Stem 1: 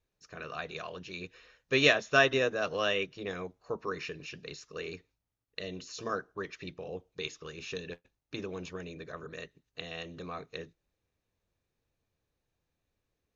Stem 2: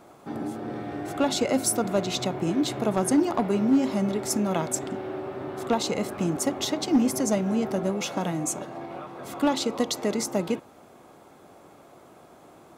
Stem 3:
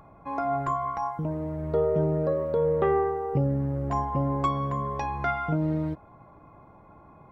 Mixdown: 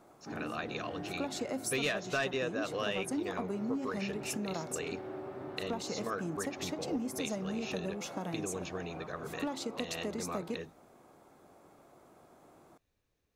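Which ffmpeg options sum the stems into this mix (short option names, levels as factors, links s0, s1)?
-filter_complex "[0:a]asoftclip=type=tanh:threshold=0.133,volume=1.26[s0];[1:a]equalizer=f=3100:t=o:w=0.77:g=-4,volume=0.376[s1];[s0][s1]amix=inputs=2:normalize=0,acompressor=threshold=0.02:ratio=2.5"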